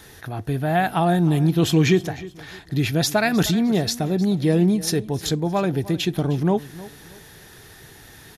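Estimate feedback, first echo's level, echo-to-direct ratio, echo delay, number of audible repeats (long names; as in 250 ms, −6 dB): 32%, −18.0 dB, −17.5 dB, 308 ms, 2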